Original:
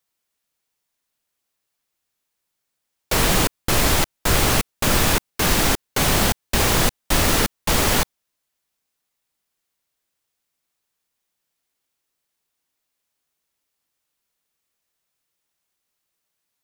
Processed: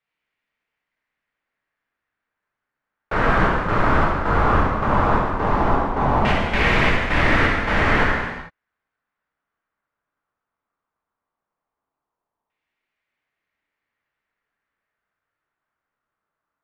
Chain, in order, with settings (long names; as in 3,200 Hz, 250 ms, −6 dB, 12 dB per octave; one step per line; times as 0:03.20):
auto-filter low-pass saw down 0.16 Hz 940–2,300 Hz
reverb whose tail is shaped and stops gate 480 ms falling, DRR −4 dB
level −4.5 dB